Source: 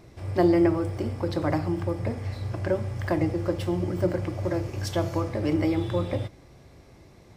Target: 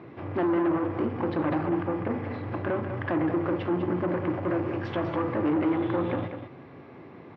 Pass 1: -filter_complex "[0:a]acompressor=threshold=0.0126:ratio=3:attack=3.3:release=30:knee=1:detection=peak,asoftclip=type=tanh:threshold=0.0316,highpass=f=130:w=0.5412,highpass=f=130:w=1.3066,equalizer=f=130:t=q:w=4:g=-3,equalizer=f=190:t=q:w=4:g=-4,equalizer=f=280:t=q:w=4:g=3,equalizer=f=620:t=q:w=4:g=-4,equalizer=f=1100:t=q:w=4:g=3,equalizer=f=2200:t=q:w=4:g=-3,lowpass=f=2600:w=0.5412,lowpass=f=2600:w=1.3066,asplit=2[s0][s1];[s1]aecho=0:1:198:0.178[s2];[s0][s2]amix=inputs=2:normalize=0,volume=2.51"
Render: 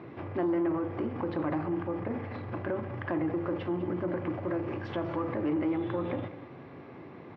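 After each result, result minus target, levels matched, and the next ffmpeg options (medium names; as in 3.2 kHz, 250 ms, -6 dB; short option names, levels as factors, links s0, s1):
compression: peak gain reduction +7.5 dB; echo-to-direct -6.5 dB
-filter_complex "[0:a]acompressor=threshold=0.0473:ratio=3:attack=3.3:release=30:knee=1:detection=peak,asoftclip=type=tanh:threshold=0.0316,highpass=f=130:w=0.5412,highpass=f=130:w=1.3066,equalizer=f=130:t=q:w=4:g=-3,equalizer=f=190:t=q:w=4:g=-4,equalizer=f=280:t=q:w=4:g=3,equalizer=f=620:t=q:w=4:g=-4,equalizer=f=1100:t=q:w=4:g=3,equalizer=f=2200:t=q:w=4:g=-3,lowpass=f=2600:w=0.5412,lowpass=f=2600:w=1.3066,asplit=2[s0][s1];[s1]aecho=0:1:198:0.178[s2];[s0][s2]amix=inputs=2:normalize=0,volume=2.51"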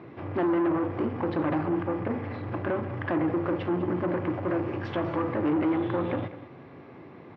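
echo-to-direct -6.5 dB
-filter_complex "[0:a]acompressor=threshold=0.0473:ratio=3:attack=3.3:release=30:knee=1:detection=peak,asoftclip=type=tanh:threshold=0.0316,highpass=f=130:w=0.5412,highpass=f=130:w=1.3066,equalizer=f=130:t=q:w=4:g=-3,equalizer=f=190:t=q:w=4:g=-4,equalizer=f=280:t=q:w=4:g=3,equalizer=f=620:t=q:w=4:g=-4,equalizer=f=1100:t=q:w=4:g=3,equalizer=f=2200:t=q:w=4:g=-3,lowpass=f=2600:w=0.5412,lowpass=f=2600:w=1.3066,asplit=2[s0][s1];[s1]aecho=0:1:198:0.376[s2];[s0][s2]amix=inputs=2:normalize=0,volume=2.51"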